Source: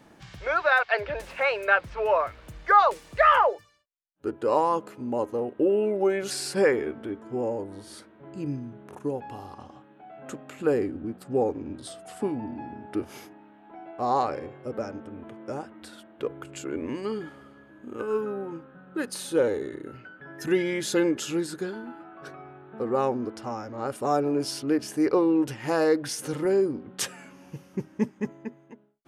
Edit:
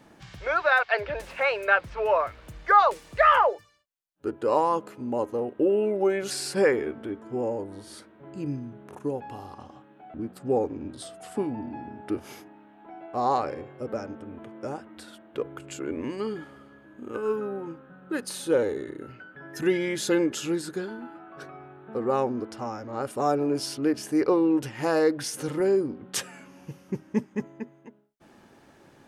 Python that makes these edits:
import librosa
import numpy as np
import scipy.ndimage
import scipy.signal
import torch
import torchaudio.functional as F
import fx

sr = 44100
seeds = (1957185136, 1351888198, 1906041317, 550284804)

y = fx.edit(x, sr, fx.cut(start_s=10.14, length_s=0.85), tone=tone)